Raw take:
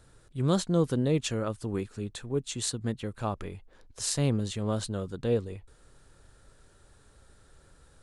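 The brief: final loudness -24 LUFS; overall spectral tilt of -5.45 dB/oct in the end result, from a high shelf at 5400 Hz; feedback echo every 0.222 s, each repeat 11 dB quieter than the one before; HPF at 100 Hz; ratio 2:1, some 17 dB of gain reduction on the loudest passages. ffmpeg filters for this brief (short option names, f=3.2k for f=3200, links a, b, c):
-af "highpass=100,highshelf=f=5.4k:g=-9,acompressor=threshold=-54dB:ratio=2,aecho=1:1:222|444|666:0.282|0.0789|0.0221,volume=22.5dB"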